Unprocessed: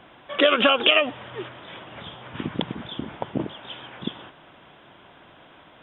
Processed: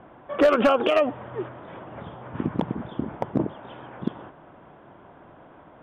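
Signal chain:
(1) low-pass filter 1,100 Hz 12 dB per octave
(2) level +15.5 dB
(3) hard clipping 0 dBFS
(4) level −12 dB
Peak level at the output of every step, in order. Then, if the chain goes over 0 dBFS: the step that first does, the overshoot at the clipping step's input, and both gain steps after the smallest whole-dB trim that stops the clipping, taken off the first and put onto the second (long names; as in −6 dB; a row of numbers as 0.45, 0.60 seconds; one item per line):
−8.0, +7.5, 0.0, −12.0 dBFS
step 2, 7.5 dB
step 2 +7.5 dB, step 4 −4 dB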